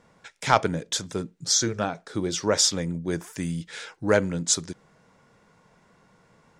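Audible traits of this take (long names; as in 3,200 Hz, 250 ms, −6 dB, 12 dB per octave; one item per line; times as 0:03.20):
background noise floor −61 dBFS
spectral slope −3.0 dB per octave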